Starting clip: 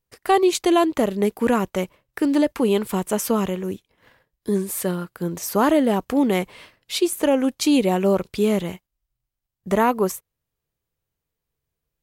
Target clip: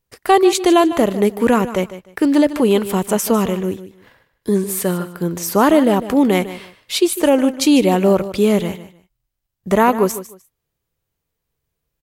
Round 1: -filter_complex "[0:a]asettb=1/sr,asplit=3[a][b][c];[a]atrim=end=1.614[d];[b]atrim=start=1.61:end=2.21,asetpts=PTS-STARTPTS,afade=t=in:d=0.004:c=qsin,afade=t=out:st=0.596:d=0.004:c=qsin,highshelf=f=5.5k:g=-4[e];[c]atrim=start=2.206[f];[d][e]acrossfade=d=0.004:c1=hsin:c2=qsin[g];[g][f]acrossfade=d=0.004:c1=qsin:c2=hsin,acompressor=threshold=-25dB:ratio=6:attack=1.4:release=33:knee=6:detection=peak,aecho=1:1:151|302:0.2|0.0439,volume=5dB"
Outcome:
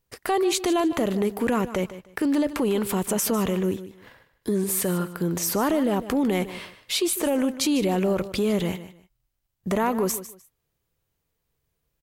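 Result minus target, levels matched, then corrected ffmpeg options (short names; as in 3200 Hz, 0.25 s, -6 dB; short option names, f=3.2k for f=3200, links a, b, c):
compressor: peak gain reduction +12.5 dB
-filter_complex "[0:a]asettb=1/sr,asplit=3[a][b][c];[a]atrim=end=1.614[d];[b]atrim=start=1.61:end=2.21,asetpts=PTS-STARTPTS,afade=t=in:d=0.004:c=qsin,afade=t=out:st=0.596:d=0.004:c=qsin,highshelf=f=5.5k:g=-4[e];[c]atrim=start=2.206[f];[d][e]acrossfade=d=0.004:c1=hsin:c2=qsin[g];[g][f]acrossfade=d=0.004:c1=qsin:c2=hsin,aecho=1:1:151|302:0.2|0.0439,volume=5dB"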